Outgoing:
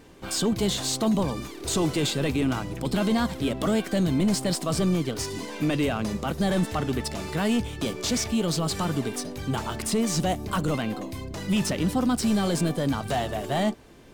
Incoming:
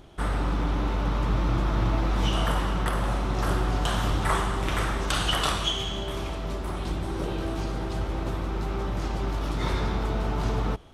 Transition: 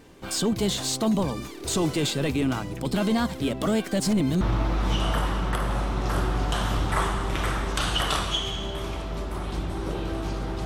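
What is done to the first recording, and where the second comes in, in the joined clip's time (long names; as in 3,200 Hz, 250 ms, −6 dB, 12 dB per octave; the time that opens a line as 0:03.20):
outgoing
0:04.00–0:04.41: reverse
0:04.41: continue with incoming from 0:01.74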